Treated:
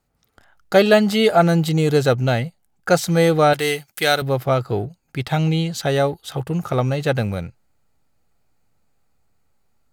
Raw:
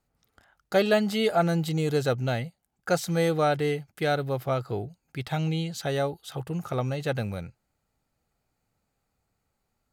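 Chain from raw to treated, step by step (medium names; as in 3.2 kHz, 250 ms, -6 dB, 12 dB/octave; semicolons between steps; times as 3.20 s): in parallel at -5.5 dB: hysteresis with a dead band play -39.5 dBFS; 3.53–4.22 s: on the sum: tilt EQ +3.5 dB/octave; trim +5 dB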